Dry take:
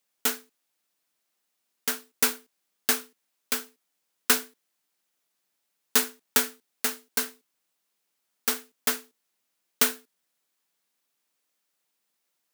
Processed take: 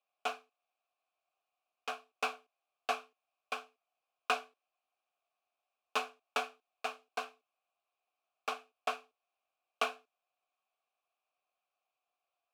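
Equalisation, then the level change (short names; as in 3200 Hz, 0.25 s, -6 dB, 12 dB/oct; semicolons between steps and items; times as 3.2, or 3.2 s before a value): vowel filter a; Bessel high-pass 300 Hz; high shelf 8400 Hz -8.5 dB; +8.5 dB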